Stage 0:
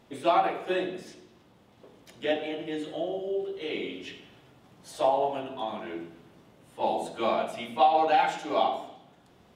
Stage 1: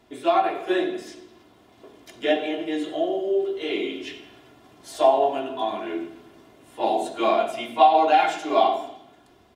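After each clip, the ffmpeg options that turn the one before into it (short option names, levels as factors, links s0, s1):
-filter_complex "[0:a]aecho=1:1:2.9:0.55,acrossover=split=170[s0][s1];[s0]alimiter=level_in=26.6:limit=0.0631:level=0:latency=1,volume=0.0376[s2];[s1]dynaudnorm=f=230:g=5:m=1.78[s3];[s2][s3]amix=inputs=2:normalize=0"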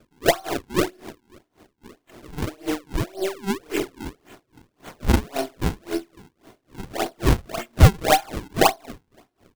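-af "aeval=exprs='if(lt(val(0),0),0.708*val(0),val(0))':c=same,acrusher=samples=42:mix=1:aa=0.000001:lfo=1:lforange=67.2:lforate=1.8,aeval=exprs='val(0)*pow(10,-28*(0.5-0.5*cos(2*PI*3.7*n/s))/20)':c=same,volume=2.11"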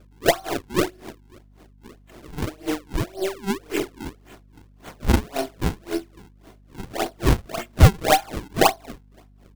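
-af "aeval=exprs='val(0)+0.00282*(sin(2*PI*50*n/s)+sin(2*PI*2*50*n/s)/2+sin(2*PI*3*50*n/s)/3+sin(2*PI*4*50*n/s)/4+sin(2*PI*5*50*n/s)/5)':c=same"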